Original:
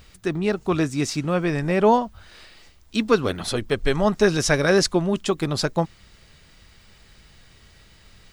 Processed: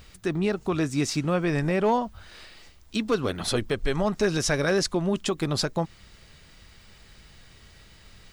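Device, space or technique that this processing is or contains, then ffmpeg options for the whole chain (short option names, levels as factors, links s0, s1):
clipper into limiter: -af "asoftclip=type=hard:threshold=0.355,alimiter=limit=0.178:level=0:latency=1:release=145"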